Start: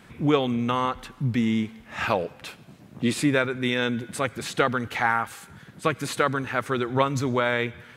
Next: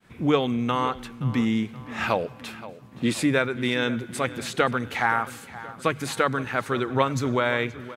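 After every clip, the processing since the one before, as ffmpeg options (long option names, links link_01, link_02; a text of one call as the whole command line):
ffmpeg -i in.wav -filter_complex "[0:a]bandreject=frequency=50:width_type=h:width=6,bandreject=frequency=100:width_type=h:width=6,bandreject=frequency=150:width_type=h:width=6,agate=range=-33dB:threshold=-45dB:ratio=3:detection=peak,asplit=2[link_01][link_02];[link_02]adelay=524,lowpass=frequency=4400:poles=1,volume=-16dB,asplit=2[link_03][link_04];[link_04]adelay=524,lowpass=frequency=4400:poles=1,volume=0.48,asplit=2[link_05][link_06];[link_06]adelay=524,lowpass=frequency=4400:poles=1,volume=0.48,asplit=2[link_07][link_08];[link_08]adelay=524,lowpass=frequency=4400:poles=1,volume=0.48[link_09];[link_01][link_03][link_05][link_07][link_09]amix=inputs=5:normalize=0" out.wav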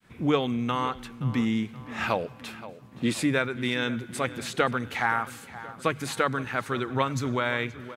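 ffmpeg -i in.wav -af "adynamicequalizer=threshold=0.0141:dfrequency=510:dqfactor=0.96:tfrequency=510:tqfactor=0.96:attack=5:release=100:ratio=0.375:range=2:mode=cutabove:tftype=bell,volume=-2dB" out.wav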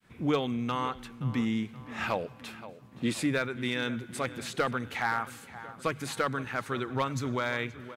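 ffmpeg -i in.wav -af "asoftclip=type=hard:threshold=-15.5dB,volume=-3.5dB" out.wav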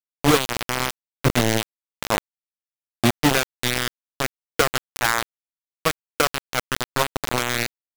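ffmpeg -i in.wav -af "lowpass=frequency=5500:width=0.5412,lowpass=frequency=5500:width=1.3066,lowshelf=frequency=72:gain=11.5,acrusher=bits=3:mix=0:aa=0.000001,volume=7.5dB" out.wav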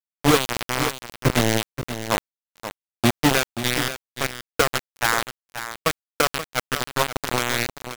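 ffmpeg -i in.wav -af "agate=range=-33dB:threshold=-28dB:ratio=3:detection=peak,aecho=1:1:530:0.282" out.wav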